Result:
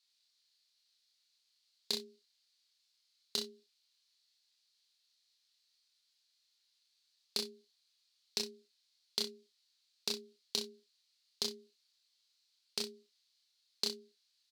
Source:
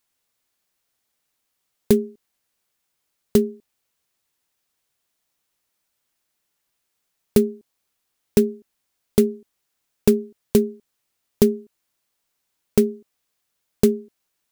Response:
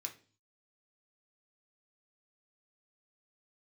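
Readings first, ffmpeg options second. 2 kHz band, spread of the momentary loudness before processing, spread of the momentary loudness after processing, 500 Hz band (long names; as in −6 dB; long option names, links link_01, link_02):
−10.0 dB, 9 LU, 8 LU, −27.0 dB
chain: -filter_complex "[0:a]acompressor=threshold=-17dB:ratio=6,bandpass=frequency=4300:width_type=q:width=4.8:csg=0,asplit=2[link_01][link_02];[link_02]adelay=27,volume=-5dB[link_03];[link_01][link_03]amix=inputs=2:normalize=0,aecho=1:1:36|65:0.531|0.141,volume=9dB"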